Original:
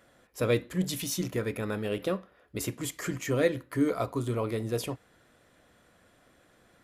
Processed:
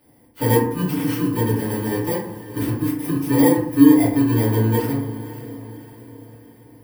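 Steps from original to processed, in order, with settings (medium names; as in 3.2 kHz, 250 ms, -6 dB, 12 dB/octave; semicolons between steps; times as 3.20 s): bit-reversed sample order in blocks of 32 samples; fifteen-band graphic EQ 100 Hz +4 dB, 250 Hz +5 dB, 6.3 kHz -11 dB; echo that smears into a reverb 547 ms, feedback 48%, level -14 dB; FDN reverb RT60 0.71 s, low-frequency decay 1.3×, high-frequency decay 0.4×, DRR -9 dB; trim -3 dB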